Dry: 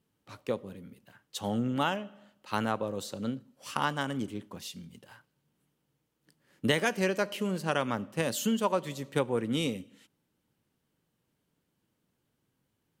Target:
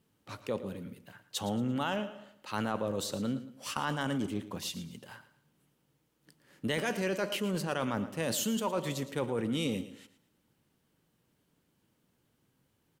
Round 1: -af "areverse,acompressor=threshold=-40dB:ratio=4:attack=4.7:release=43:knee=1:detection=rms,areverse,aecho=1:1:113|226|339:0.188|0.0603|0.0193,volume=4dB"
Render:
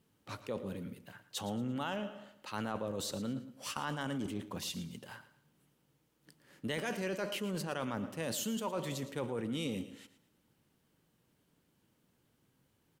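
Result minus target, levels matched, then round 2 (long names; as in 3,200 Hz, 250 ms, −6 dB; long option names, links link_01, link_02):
downward compressor: peak gain reduction +5 dB
-af "areverse,acompressor=threshold=-33.5dB:ratio=4:attack=4.7:release=43:knee=1:detection=rms,areverse,aecho=1:1:113|226|339:0.188|0.0603|0.0193,volume=4dB"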